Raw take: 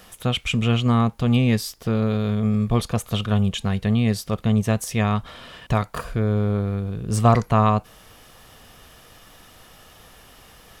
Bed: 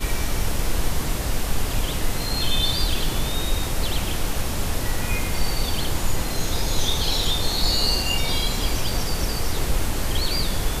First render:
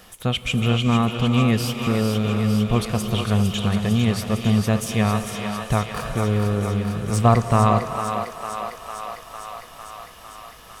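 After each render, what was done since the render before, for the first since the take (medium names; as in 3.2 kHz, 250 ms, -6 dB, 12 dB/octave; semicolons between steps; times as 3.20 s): on a send: thinning echo 453 ms, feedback 78%, high-pass 440 Hz, level -6.5 dB; on the sum: gated-style reverb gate 460 ms rising, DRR 8 dB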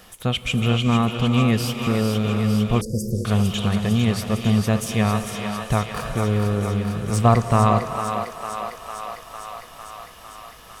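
2.81–3.25 s: Chebyshev band-stop 540–5000 Hz, order 5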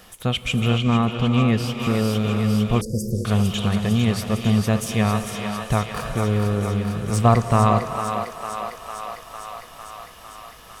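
0.78–1.80 s: low-pass 4 kHz 6 dB/octave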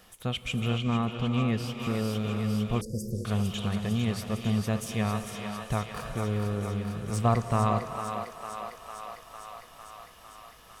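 trim -8.5 dB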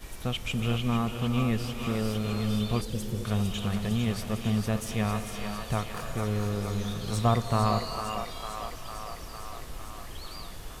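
add bed -18.5 dB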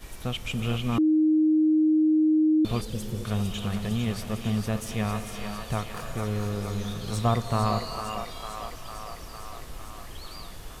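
0.98–2.65 s: bleep 311 Hz -17.5 dBFS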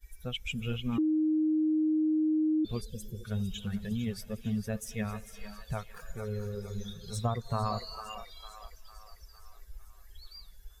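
expander on every frequency bin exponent 2; compression, threshold -26 dBFS, peak gain reduction 6.5 dB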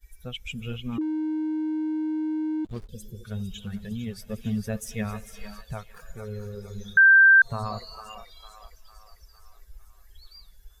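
1.01–2.89 s: hysteresis with a dead band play -35 dBFS; 4.29–5.61 s: gain +4 dB; 6.97–7.42 s: bleep 1.57 kHz -11 dBFS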